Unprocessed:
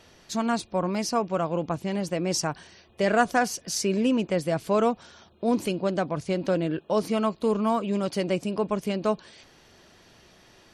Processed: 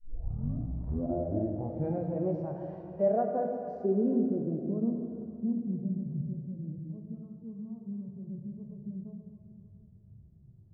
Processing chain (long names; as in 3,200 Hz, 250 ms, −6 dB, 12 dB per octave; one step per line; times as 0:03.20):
turntable start at the beginning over 2.25 s
downward compressor 12 to 1, threshold −32 dBFS, peak gain reduction 17.5 dB
low-pass filter sweep 720 Hz → 120 Hz, 0:02.87–0:06.37
harmonic and percussive parts rebalanced percussive −16 dB
dense smooth reverb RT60 2.8 s, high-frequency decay 0.95×, DRR 1.5 dB
level +3 dB